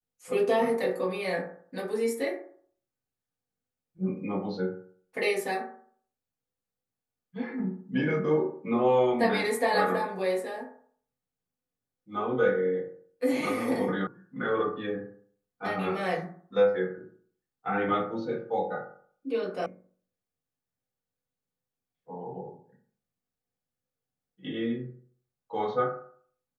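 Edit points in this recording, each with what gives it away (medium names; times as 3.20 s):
14.07 s: sound stops dead
19.66 s: sound stops dead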